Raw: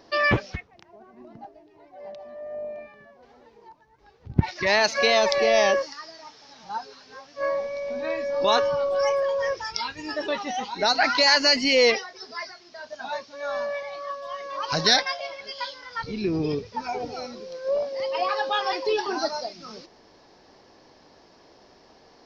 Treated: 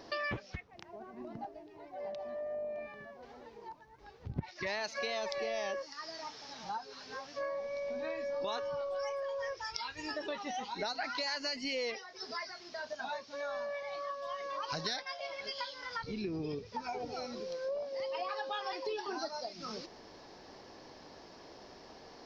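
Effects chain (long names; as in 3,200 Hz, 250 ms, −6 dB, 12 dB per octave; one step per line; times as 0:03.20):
0:08.81–0:10.11: parametric band 210 Hz −9 dB 1.3 octaves
downward compressor 4 to 1, threshold −39 dBFS, peak gain reduction 21.5 dB
level +1 dB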